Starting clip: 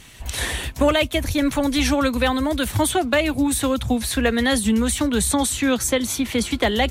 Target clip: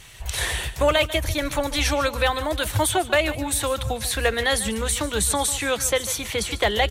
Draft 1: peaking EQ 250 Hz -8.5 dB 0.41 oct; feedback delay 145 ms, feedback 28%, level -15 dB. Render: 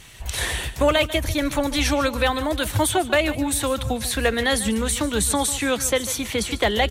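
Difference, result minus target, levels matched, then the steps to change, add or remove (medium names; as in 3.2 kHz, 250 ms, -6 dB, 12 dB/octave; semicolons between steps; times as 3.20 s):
250 Hz band +5.0 dB
change: peaking EQ 250 Hz -19.5 dB 0.41 oct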